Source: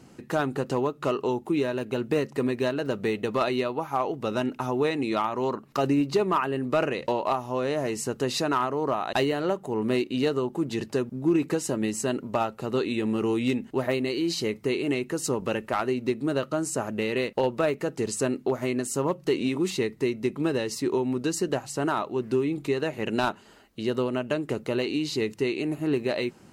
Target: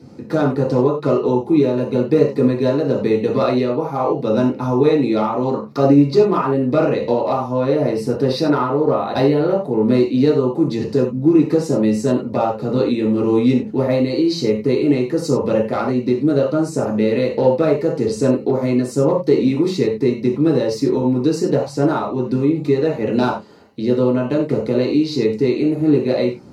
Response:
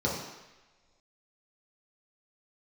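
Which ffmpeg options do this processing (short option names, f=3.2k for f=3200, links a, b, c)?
-filter_complex "[0:a]asettb=1/sr,asplit=3[a][b][c];[a]atrim=end=7.514[d];[b]atrim=start=7.51:end=9.84,asetpts=PTS-STARTPTS,afade=t=in:d=0.004:c=qsin,afade=t=out:st=2.326:d=0.004:c=qsin,equalizer=f=6.9k:t=o:w=0.35:g=-11.5[e];[c]atrim=start=9.836[f];[d][e]acrossfade=d=0.004:c1=hsin:c2=qsin[g];[g][f]acrossfade=d=0.004:c1=qsin:c2=hsin[h];[1:a]atrim=start_sample=2205,afade=t=out:st=0.15:d=0.01,atrim=end_sample=7056[i];[h][i]afir=irnorm=-1:irlink=0,volume=-4dB"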